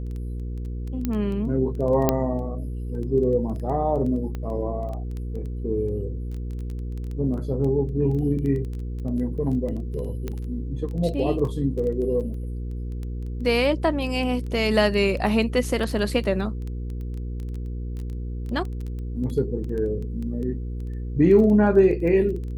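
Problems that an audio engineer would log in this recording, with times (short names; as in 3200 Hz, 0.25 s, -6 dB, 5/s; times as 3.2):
crackle 10/s -29 dBFS
hum 60 Hz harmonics 8 -30 dBFS
1.05 pop -13 dBFS
2.09 pop -5 dBFS
4.35 pop -20 dBFS
10.28 pop -17 dBFS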